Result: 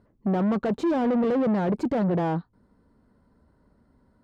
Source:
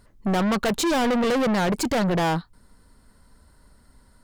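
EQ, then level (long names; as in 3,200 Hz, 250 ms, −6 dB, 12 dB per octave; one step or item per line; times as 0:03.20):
resonant band-pass 280 Hz, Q 0.56
0.0 dB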